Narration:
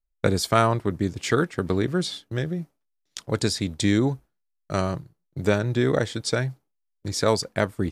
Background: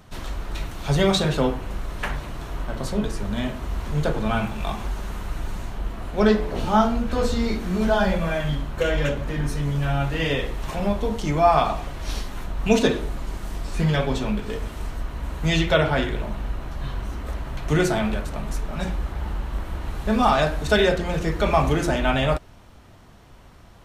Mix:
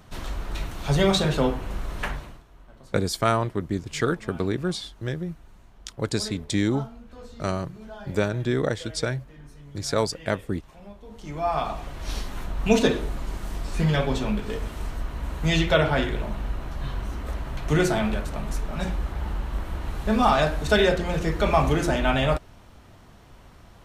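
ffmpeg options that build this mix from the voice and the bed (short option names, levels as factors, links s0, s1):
-filter_complex "[0:a]adelay=2700,volume=0.75[s0];[1:a]volume=8.91,afade=t=out:st=2.02:d=0.41:silence=0.1,afade=t=in:st=11.05:d=1.25:silence=0.1[s1];[s0][s1]amix=inputs=2:normalize=0"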